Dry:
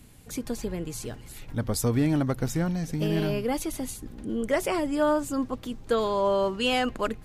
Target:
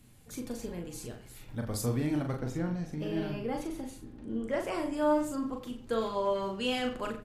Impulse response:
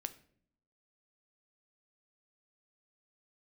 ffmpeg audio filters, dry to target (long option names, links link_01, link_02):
-filter_complex "[0:a]asettb=1/sr,asplit=3[link_01][link_02][link_03];[link_01]atrim=end=2.344[link_04];[link_02]atrim=start=2.34:end=4.7,asetpts=PTS-STARTPTS,afade=type=in:duration=0.004:curve=qsin,afade=type=out:start_time=2.356:duration=0.004:curve=qsin,lowpass=frequency=3100:poles=1[link_05];[link_03]atrim=start=4.696[link_06];[link_04][link_05]acrossfade=duration=0.004:curve1=hsin:curve2=qsin[link_07];[link_07][link_06]acrossfade=duration=0.004:curve1=qsin:curve2=hsin,asplit=2[link_08][link_09];[link_09]adelay=40,volume=-5dB[link_10];[link_08][link_10]amix=inputs=2:normalize=0,asplit=2[link_11][link_12];[link_12]adelay=90,highpass=300,lowpass=3400,asoftclip=type=hard:threshold=-20.5dB,volume=-12dB[link_13];[link_11][link_13]amix=inputs=2:normalize=0[link_14];[1:a]atrim=start_sample=2205[link_15];[link_14][link_15]afir=irnorm=-1:irlink=0,volume=-5.5dB"